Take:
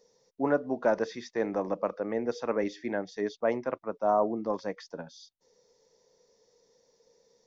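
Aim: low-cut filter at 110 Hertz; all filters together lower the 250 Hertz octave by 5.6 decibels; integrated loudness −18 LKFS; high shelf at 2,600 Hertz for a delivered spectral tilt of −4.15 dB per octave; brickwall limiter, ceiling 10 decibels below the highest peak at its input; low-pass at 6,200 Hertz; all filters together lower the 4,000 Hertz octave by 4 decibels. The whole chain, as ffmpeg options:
ffmpeg -i in.wav -af "highpass=110,lowpass=6200,equalizer=frequency=250:width_type=o:gain=-7,highshelf=frequency=2600:gain=4.5,equalizer=frequency=4000:width_type=o:gain=-8,volume=19dB,alimiter=limit=-5.5dB:level=0:latency=1" out.wav

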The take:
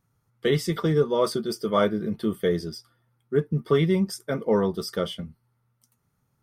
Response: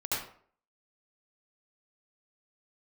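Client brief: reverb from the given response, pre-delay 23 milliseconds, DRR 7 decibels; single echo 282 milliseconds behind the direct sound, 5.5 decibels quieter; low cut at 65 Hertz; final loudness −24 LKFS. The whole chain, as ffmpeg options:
-filter_complex "[0:a]highpass=65,aecho=1:1:282:0.531,asplit=2[link_01][link_02];[1:a]atrim=start_sample=2205,adelay=23[link_03];[link_02][link_03]afir=irnorm=-1:irlink=0,volume=-13.5dB[link_04];[link_01][link_04]amix=inputs=2:normalize=0"

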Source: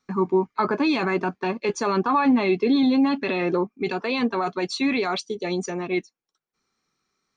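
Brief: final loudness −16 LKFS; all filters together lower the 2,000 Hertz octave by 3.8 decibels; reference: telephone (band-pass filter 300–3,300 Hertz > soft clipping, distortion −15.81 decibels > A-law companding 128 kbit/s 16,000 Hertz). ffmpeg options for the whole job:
ffmpeg -i in.wav -af "highpass=300,lowpass=3300,equalizer=frequency=2000:width_type=o:gain=-4,asoftclip=threshold=-19.5dB,volume=12dB" -ar 16000 -c:a pcm_alaw out.wav

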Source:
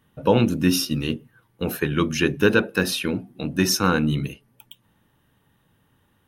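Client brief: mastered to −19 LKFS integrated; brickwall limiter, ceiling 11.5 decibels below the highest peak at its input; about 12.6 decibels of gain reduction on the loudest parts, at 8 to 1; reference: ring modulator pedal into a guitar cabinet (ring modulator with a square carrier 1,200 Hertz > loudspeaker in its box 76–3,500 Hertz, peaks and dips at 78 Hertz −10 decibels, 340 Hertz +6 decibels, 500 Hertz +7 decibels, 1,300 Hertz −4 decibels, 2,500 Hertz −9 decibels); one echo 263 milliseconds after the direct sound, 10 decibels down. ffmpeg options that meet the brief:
ffmpeg -i in.wav -af "acompressor=threshold=-26dB:ratio=8,alimiter=limit=-23.5dB:level=0:latency=1,aecho=1:1:263:0.316,aeval=exprs='val(0)*sgn(sin(2*PI*1200*n/s))':channel_layout=same,highpass=76,equalizer=frequency=78:width_type=q:width=4:gain=-10,equalizer=frequency=340:width_type=q:width=4:gain=6,equalizer=frequency=500:width_type=q:width=4:gain=7,equalizer=frequency=1300:width_type=q:width=4:gain=-4,equalizer=frequency=2500:width_type=q:width=4:gain=-9,lowpass=frequency=3500:width=0.5412,lowpass=frequency=3500:width=1.3066,volume=17dB" out.wav

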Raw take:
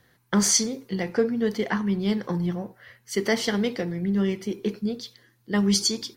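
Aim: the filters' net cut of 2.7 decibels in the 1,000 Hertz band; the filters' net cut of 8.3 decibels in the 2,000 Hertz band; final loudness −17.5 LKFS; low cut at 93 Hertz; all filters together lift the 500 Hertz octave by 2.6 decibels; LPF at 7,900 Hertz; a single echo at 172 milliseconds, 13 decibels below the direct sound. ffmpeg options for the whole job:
ffmpeg -i in.wav -af "highpass=93,lowpass=7900,equalizer=frequency=500:width_type=o:gain=4,equalizer=frequency=1000:width_type=o:gain=-3,equalizer=frequency=2000:width_type=o:gain=-9,aecho=1:1:172:0.224,volume=7.5dB" out.wav

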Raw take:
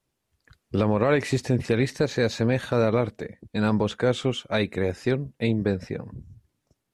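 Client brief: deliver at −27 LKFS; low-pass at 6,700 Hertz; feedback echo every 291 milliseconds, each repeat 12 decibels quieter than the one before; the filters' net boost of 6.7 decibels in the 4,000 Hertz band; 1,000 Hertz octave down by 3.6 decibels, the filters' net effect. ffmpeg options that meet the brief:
ffmpeg -i in.wav -af "lowpass=6700,equalizer=frequency=1000:width_type=o:gain=-5.5,equalizer=frequency=4000:width_type=o:gain=8.5,aecho=1:1:291|582|873:0.251|0.0628|0.0157,volume=-2dB" out.wav

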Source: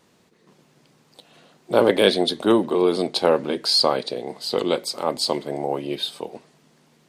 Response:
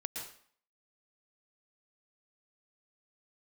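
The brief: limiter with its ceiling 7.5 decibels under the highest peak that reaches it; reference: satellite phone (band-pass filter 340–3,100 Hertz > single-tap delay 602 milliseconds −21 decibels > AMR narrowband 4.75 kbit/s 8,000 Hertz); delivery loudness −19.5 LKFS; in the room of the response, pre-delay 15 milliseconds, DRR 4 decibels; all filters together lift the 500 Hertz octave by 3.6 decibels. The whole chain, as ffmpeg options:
-filter_complex "[0:a]equalizer=frequency=500:width_type=o:gain=5.5,alimiter=limit=-6.5dB:level=0:latency=1,asplit=2[link_01][link_02];[1:a]atrim=start_sample=2205,adelay=15[link_03];[link_02][link_03]afir=irnorm=-1:irlink=0,volume=-4.5dB[link_04];[link_01][link_04]amix=inputs=2:normalize=0,highpass=340,lowpass=3100,aecho=1:1:602:0.0891,volume=3.5dB" -ar 8000 -c:a libopencore_amrnb -b:a 4750

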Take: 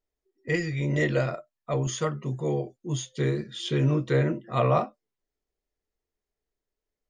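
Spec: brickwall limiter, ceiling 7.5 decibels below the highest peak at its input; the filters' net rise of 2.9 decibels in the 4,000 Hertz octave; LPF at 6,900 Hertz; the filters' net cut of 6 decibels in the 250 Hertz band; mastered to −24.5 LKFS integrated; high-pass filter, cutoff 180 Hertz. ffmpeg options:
ffmpeg -i in.wav -af "highpass=180,lowpass=6900,equalizer=frequency=250:width_type=o:gain=-7,equalizer=frequency=4000:width_type=o:gain=4,volume=7.5dB,alimiter=limit=-11.5dB:level=0:latency=1" out.wav

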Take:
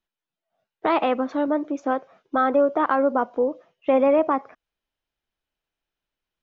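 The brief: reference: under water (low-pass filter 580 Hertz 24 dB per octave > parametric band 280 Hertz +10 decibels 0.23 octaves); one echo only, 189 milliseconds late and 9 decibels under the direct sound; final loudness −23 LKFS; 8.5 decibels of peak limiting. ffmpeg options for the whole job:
ffmpeg -i in.wav -af "alimiter=limit=-16dB:level=0:latency=1,lowpass=frequency=580:width=0.5412,lowpass=frequency=580:width=1.3066,equalizer=frequency=280:width_type=o:width=0.23:gain=10,aecho=1:1:189:0.355,volume=1dB" out.wav

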